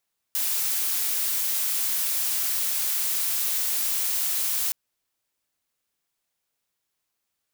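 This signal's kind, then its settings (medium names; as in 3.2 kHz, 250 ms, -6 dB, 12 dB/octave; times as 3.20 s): noise blue, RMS -25.5 dBFS 4.37 s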